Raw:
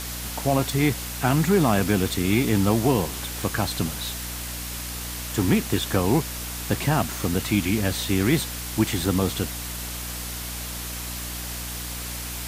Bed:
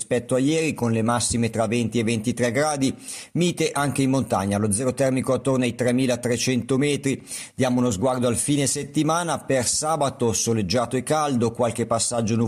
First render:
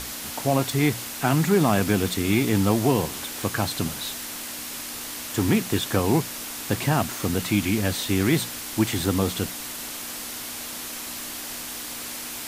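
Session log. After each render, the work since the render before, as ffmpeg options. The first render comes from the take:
-af "bandreject=f=60:t=h:w=6,bandreject=f=120:t=h:w=6,bandreject=f=180:t=h:w=6"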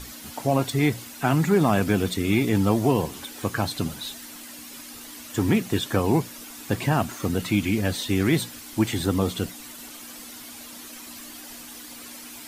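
-af "afftdn=nr=10:nf=-35"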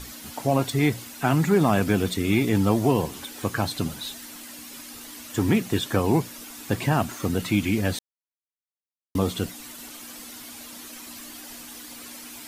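-filter_complex "[0:a]asplit=3[s0][s1][s2];[s0]atrim=end=7.99,asetpts=PTS-STARTPTS,afade=t=out:st=7.986:d=0.004:c=hsin[s3];[s1]atrim=start=7.99:end=9.15,asetpts=PTS-STARTPTS,volume=0[s4];[s2]atrim=start=9.15,asetpts=PTS-STARTPTS,afade=t=in:d=0.004:c=hsin[s5];[s3][s4][s5]concat=n=3:v=0:a=1"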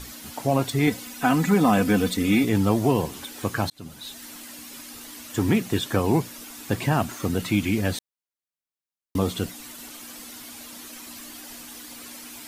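-filter_complex "[0:a]asettb=1/sr,asplit=3[s0][s1][s2];[s0]atrim=end=0.874[s3];[s1]atrim=start=0.87:end=2.44,asetpts=PTS-STARTPTS,afade=t=in:d=0.004:c=qsin,afade=t=out:st=1.566:d=0.004:c=qsin,aecho=1:1:4:0.7,atrim=end_sample=69237[s4];[s2]atrim=start=2.436[s5];[s3][s4]acrossfade=d=0.004:c1=hsin:c2=qsin[s6];[s6][s5]acrossfade=d=0.004:c1=qsin:c2=hsin,asplit=2[s7][s8];[s7]atrim=end=3.7,asetpts=PTS-STARTPTS,afade=t=out:st=3.696:d=0.004:c=hsin[s9];[s8]atrim=start=3.7,asetpts=PTS-STARTPTS,afade=t=in:d=0.57[s10];[s9][s10]concat=n=2:v=0:a=1"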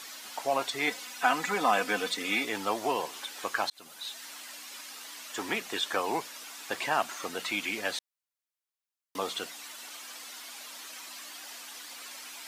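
-filter_complex "[0:a]highpass=710,acrossover=split=7500[s0][s1];[s1]acompressor=threshold=0.00316:ratio=4:attack=1:release=60[s2];[s0][s2]amix=inputs=2:normalize=0"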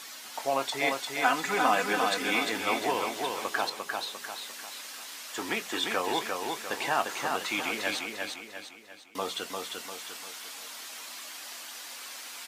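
-filter_complex "[0:a]asplit=2[s0][s1];[s1]adelay=22,volume=0.237[s2];[s0][s2]amix=inputs=2:normalize=0,aecho=1:1:349|698|1047|1396|1745|2094:0.631|0.278|0.122|0.0537|0.0236|0.0104"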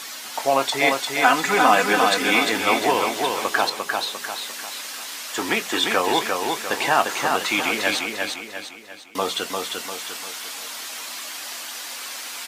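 -af "volume=2.82,alimiter=limit=0.794:level=0:latency=1"

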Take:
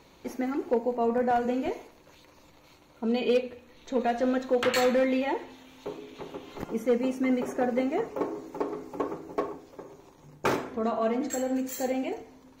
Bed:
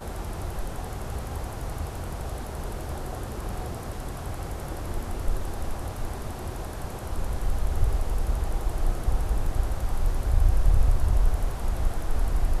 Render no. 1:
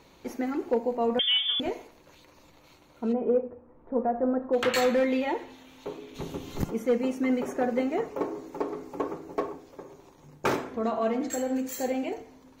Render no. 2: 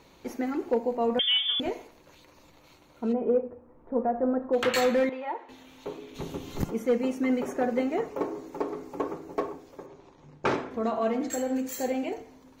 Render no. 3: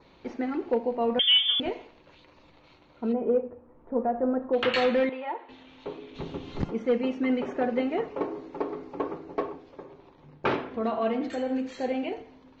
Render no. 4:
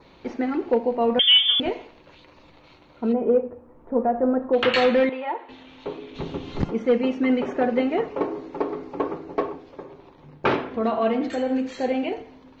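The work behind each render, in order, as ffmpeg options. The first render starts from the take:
-filter_complex "[0:a]asettb=1/sr,asplit=3[s0][s1][s2];[s0]atrim=end=1.194[s3];[s1]atrim=start=1.19:end=1.6,asetpts=PTS-STARTPTS,afade=t=in:d=0.004:c=qsin,afade=t=out:st=0.406:d=0.004:c=qsin,lowpass=f=3100:t=q:w=0.5098,lowpass=f=3100:t=q:w=0.6013,lowpass=f=3100:t=q:w=0.9,lowpass=f=3100:t=q:w=2.563,afreqshift=-3700[s4];[s2]atrim=start=1.596[s5];[s3][s4]acrossfade=d=0.004:c1=hsin:c2=qsin[s6];[s6][s5]acrossfade=d=0.004:c1=qsin:c2=hsin,asplit=3[s7][s8][s9];[s7]afade=t=out:st=3.12:d=0.02[s10];[s8]lowpass=f=1200:w=0.5412,lowpass=f=1200:w=1.3066,afade=t=in:st=3.12:d=0.02,afade=t=out:st=4.52:d=0.02[s11];[s9]afade=t=in:st=4.52:d=0.02[s12];[s10][s11][s12]amix=inputs=3:normalize=0,asplit=3[s13][s14][s15];[s13]afade=t=out:st=6.14:d=0.02[s16];[s14]bass=f=250:g=14,treble=f=4000:g=11,afade=t=in:st=6.14:d=0.02,afade=t=out:st=6.69:d=0.02[s17];[s15]afade=t=in:st=6.69:d=0.02[s18];[s16][s17][s18]amix=inputs=3:normalize=0"
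-filter_complex "[0:a]asettb=1/sr,asplit=3[s0][s1][s2];[s0]atrim=end=5.094[s3];[s1]atrim=start=5.09:end=5.49,asetpts=PTS-STARTPTS,afade=t=in:d=0.004:c=qsin,afade=t=out:st=0.396:d=0.004:c=qsin,bandpass=f=1000:t=q:w=1.4[s4];[s2]atrim=start=5.486[s5];[s3][s4]acrossfade=d=0.004:c1=hsin:c2=qsin[s6];[s6][s5]acrossfade=d=0.004:c1=qsin:c2=hsin,asettb=1/sr,asplit=3[s7][s8][s9];[s7]atrim=end=9.864[s10];[s8]atrim=start=9.86:end=10.71,asetpts=PTS-STARTPTS,afade=t=in:d=0.004:c=qsin,afade=t=out:st=0.846:d=0.004:c=qsin,lowpass=4800[s11];[s9]atrim=start=10.706[s12];[s10][s11]acrossfade=d=0.004:c1=hsin:c2=qsin[s13];[s13][s12]acrossfade=d=0.004:c1=qsin:c2=hsin"
-af "lowpass=f=4400:w=0.5412,lowpass=f=4400:w=1.3066,adynamicequalizer=threshold=0.00355:dfrequency=2900:dqfactor=3.1:tfrequency=2900:tqfactor=3.1:attack=5:release=100:ratio=0.375:range=2.5:mode=boostabove:tftype=bell"
-af "volume=1.78"

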